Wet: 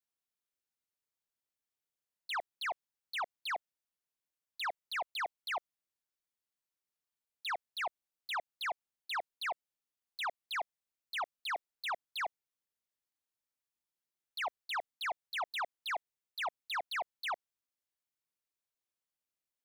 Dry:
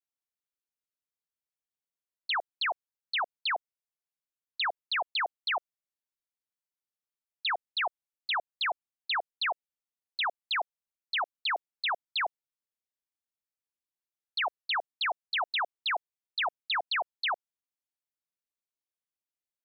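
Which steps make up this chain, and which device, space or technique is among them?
saturation between pre-emphasis and de-emphasis (high-shelf EQ 3,100 Hz +11.5 dB; soft clipping −31 dBFS, distortion −9 dB; high-shelf EQ 3,100 Hz −11.5 dB)

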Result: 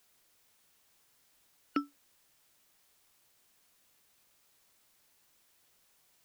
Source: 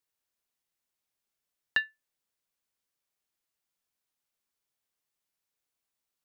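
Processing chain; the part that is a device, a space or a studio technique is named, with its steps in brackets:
split-band scrambled radio (band-splitting scrambler in four parts; band-pass filter 330–2,900 Hz; white noise bed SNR 19 dB)
level −1 dB

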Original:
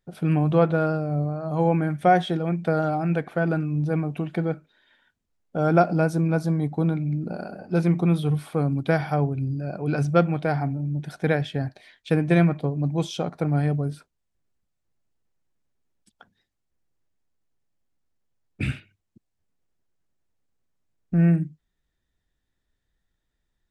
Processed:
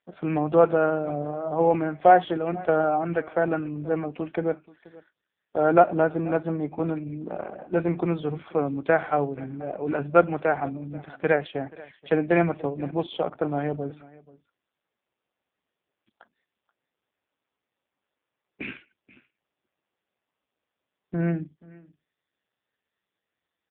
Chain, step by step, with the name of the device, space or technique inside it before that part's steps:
satellite phone (band-pass filter 340–3,400 Hz; single-tap delay 481 ms −21.5 dB; level +4 dB; AMR narrowband 5.15 kbit/s 8,000 Hz)

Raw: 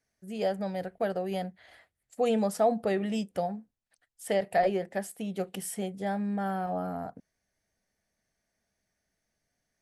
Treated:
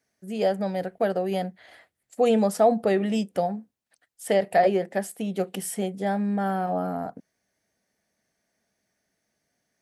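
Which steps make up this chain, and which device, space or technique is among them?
filter by subtraction (in parallel: low-pass filter 250 Hz 12 dB per octave + polarity inversion)
on the sum: level +4.5 dB

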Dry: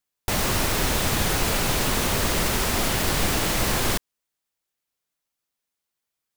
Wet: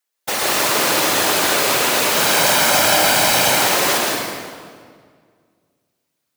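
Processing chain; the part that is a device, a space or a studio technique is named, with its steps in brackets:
0:02.15–0:03.50: comb filter 1.3 ms, depth 91%
whispering ghost (random phases in short frames; high-pass filter 390 Hz 12 dB per octave; convolution reverb RT60 1.9 s, pre-delay 112 ms, DRR −2.5 dB)
level +4.5 dB

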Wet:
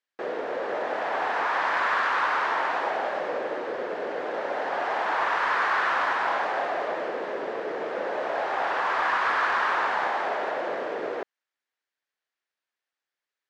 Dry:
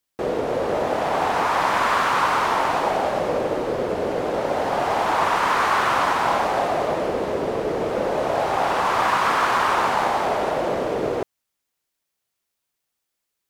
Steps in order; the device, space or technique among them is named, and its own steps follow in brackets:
intercom (band-pass filter 360–4,400 Hz; parametric band 1,700 Hz +8 dB 0.52 octaves; soft clipping −8 dBFS, distortion −25 dB)
level −6 dB

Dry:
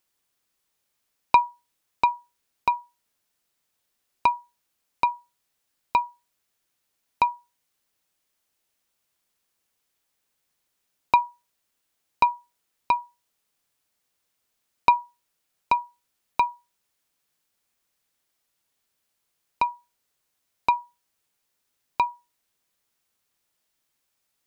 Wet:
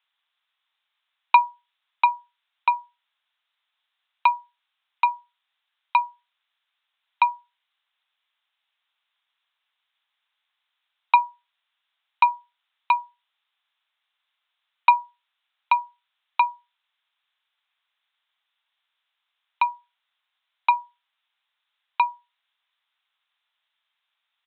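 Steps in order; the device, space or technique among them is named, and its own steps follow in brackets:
musical greeting card (downsampling to 8,000 Hz; high-pass filter 870 Hz 24 dB per octave; parametric band 3,600 Hz +6 dB 0.52 octaves)
level +3.5 dB

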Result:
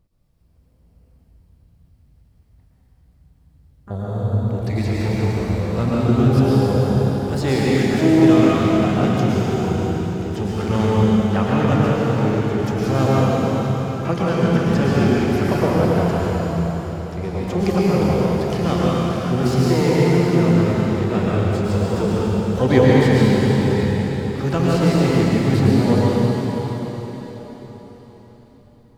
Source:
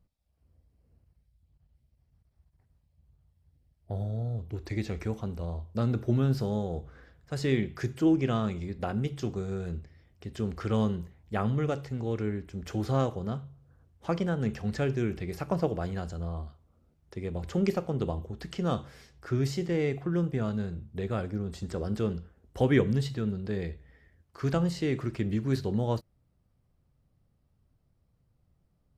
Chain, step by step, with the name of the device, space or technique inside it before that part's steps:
shimmer-style reverb (pitch-shifted copies added +12 semitones −11 dB; convolution reverb RT60 4.7 s, pre-delay 103 ms, DRR −7 dB)
level +5.5 dB

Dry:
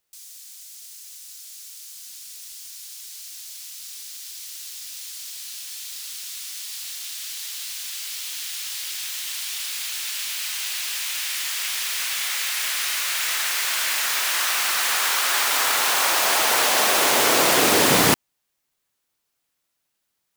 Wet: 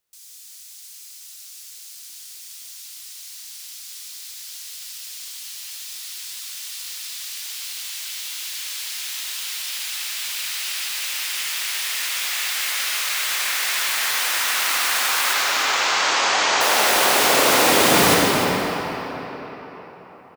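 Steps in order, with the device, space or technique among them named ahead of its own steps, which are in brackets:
0:15.33–0:16.61: Butterworth low-pass 7,300 Hz 48 dB per octave
cave (single-tap delay 301 ms −10.5 dB; convolution reverb RT60 4.5 s, pre-delay 60 ms, DRR −3 dB)
level −2.5 dB

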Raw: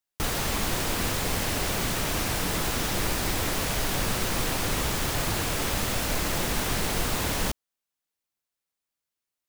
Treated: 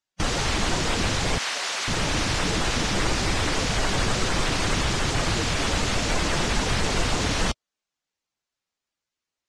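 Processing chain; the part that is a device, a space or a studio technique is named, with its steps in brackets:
clip after many re-uploads (low-pass filter 7,600 Hz 24 dB per octave; spectral magnitudes quantised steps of 15 dB)
0:01.38–0:01.88: high-pass filter 830 Hz 12 dB per octave
level +4.5 dB

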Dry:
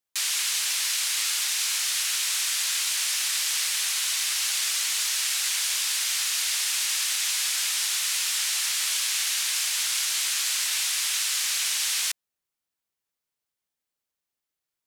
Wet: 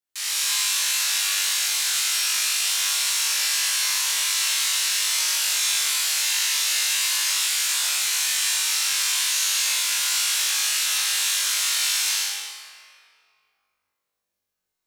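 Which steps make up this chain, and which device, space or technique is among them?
tunnel (flutter between parallel walls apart 3.5 metres, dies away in 0.73 s; convolution reverb RT60 2.5 s, pre-delay 59 ms, DRR −4.5 dB)
level −6 dB

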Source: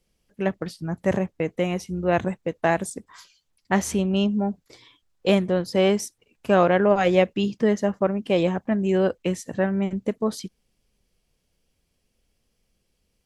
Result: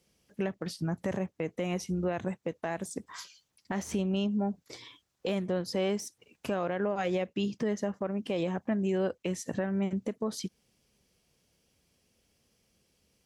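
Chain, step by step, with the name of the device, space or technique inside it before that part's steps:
broadcast voice chain (high-pass filter 79 Hz; de-essing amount 65%; downward compressor 3 to 1, threshold −32 dBFS, peak gain reduction 14.5 dB; parametric band 5,900 Hz +3 dB 0.46 octaves; brickwall limiter −23.5 dBFS, peak gain reduction 7.5 dB)
level +2.5 dB

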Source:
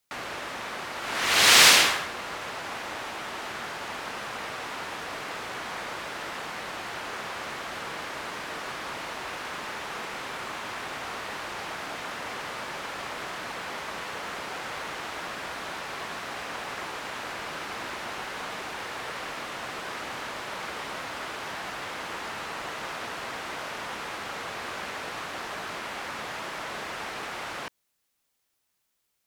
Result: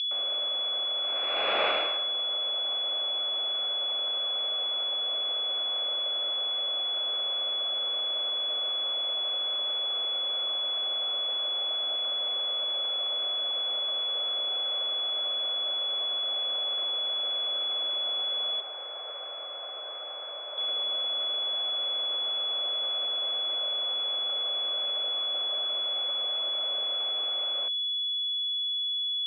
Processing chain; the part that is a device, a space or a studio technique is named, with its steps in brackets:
toy sound module (linearly interpolated sample-rate reduction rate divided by 4×; switching amplifier with a slow clock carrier 3,400 Hz; loudspeaker in its box 540–4,800 Hz, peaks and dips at 580 Hz +8 dB, 950 Hz −9 dB, 1,800 Hz −10 dB, 2,500 Hz +9 dB)
0:18.60–0:20.58: three-way crossover with the lows and the highs turned down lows −21 dB, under 370 Hz, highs −14 dB, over 2,300 Hz
level −3 dB

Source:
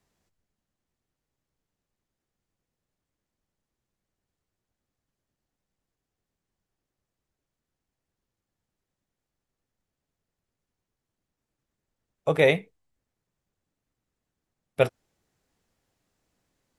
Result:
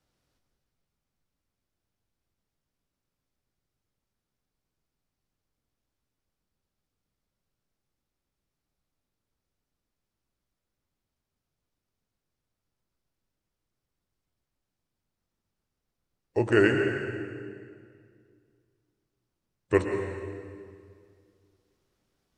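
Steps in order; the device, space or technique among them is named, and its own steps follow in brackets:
slowed and reverbed (speed change −25%; convolution reverb RT60 2.1 s, pre-delay 103 ms, DRR 4 dB)
level −2 dB

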